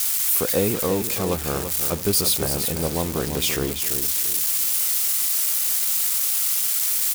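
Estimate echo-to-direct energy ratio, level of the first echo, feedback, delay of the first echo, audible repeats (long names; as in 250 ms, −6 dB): −8.0 dB, −8.5 dB, 33%, 338 ms, 3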